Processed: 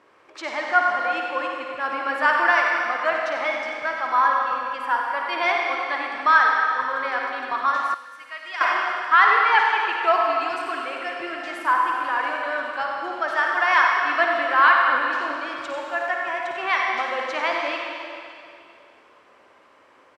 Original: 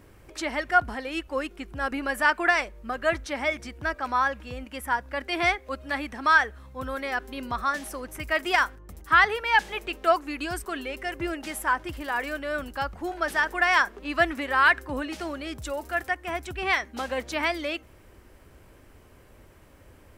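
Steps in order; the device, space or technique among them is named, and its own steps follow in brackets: station announcement (BPF 440–4400 Hz; bell 1100 Hz +6.5 dB 0.48 oct; loudspeakers at several distances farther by 19 m -9 dB, 32 m -9 dB; reverb RT60 2.5 s, pre-delay 68 ms, DRR 1 dB); 7.94–8.61 passive tone stack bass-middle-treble 5-5-5

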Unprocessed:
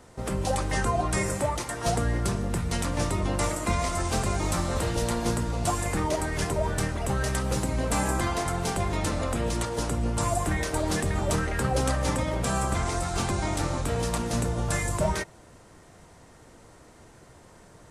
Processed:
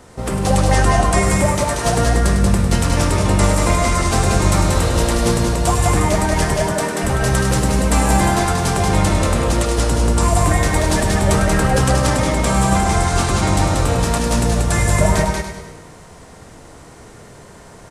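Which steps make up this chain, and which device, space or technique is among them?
compressed reverb return (on a send at -4.5 dB: reverb RT60 1.0 s, pre-delay 47 ms + compressor, threshold -30 dBFS, peak gain reduction 10 dB); 6.54–7.03 on the sum: elliptic high-pass 160 Hz; feedback echo 0.102 s, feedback 39%, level -9 dB; echo 0.185 s -3 dB; gain +8 dB

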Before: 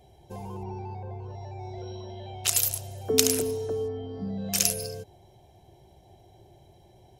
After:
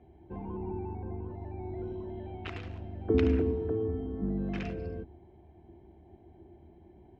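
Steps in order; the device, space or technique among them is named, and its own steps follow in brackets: sub-octave bass pedal (octaver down 2 oct, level +3 dB; speaker cabinet 70–2200 Hz, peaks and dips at 75 Hz +9 dB, 120 Hz -8 dB, 230 Hz +5 dB, 330 Hz +10 dB, 540 Hz -7 dB, 770 Hz -3 dB); gain -2.5 dB

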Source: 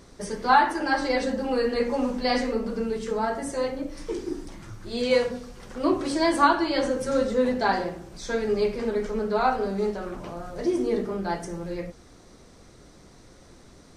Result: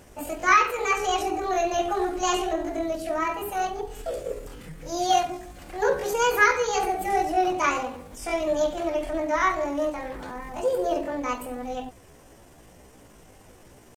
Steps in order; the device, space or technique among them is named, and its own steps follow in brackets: chipmunk voice (pitch shift +6.5 st)

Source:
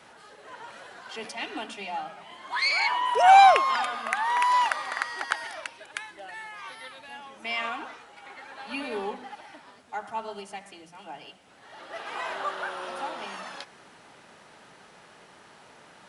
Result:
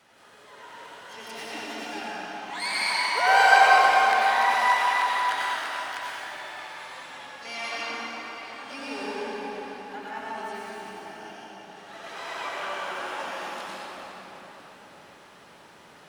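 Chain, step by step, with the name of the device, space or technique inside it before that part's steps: shimmer-style reverb (harmoniser +12 st -6 dB; reverb RT60 4.7 s, pre-delay 84 ms, DRR -8 dB); gain -8.5 dB

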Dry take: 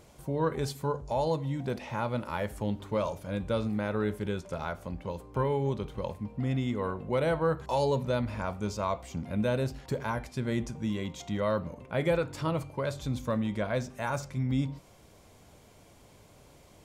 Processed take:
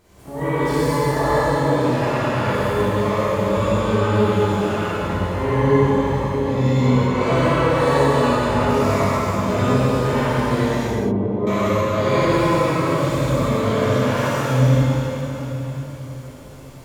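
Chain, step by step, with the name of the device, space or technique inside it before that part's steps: shimmer-style reverb (harmoniser +12 st -6 dB; reverb RT60 4.3 s, pre-delay 28 ms, DRR -8 dB); 10.87–11.47 Chebyshev low-pass 770 Hz, order 2; non-linear reverb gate 0.26 s flat, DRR -7.5 dB; gain -5.5 dB

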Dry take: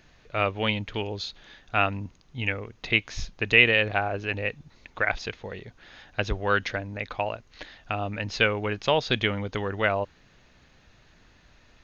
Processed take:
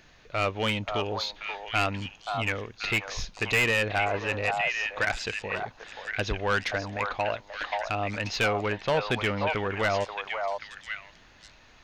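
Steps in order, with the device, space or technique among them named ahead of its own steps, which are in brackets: 8.72–9.59 LPF 2700 Hz 12 dB/oct; low shelf 350 Hz -5 dB; saturation between pre-emphasis and de-emphasis (high shelf 5500 Hz +7.5 dB; soft clip -21.5 dBFS, distortion -6 dB; high shelf 5500 Hz -7.5 dB); delay with a stepping band-pass 0.532 s, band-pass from 870 Hz, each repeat 1.4 oct, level -0.5 dB; gain +3 dB

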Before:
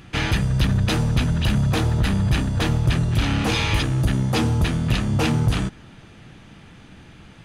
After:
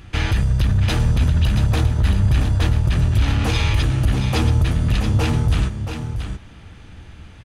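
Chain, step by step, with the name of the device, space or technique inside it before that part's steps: car stereo with a boomy subwoofer (resonant low shelf 110 Hz +8 dB, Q 1.5; limiter -10 dBFS, peak gain reduction 9 dB); echo 0.678 s -8 dB

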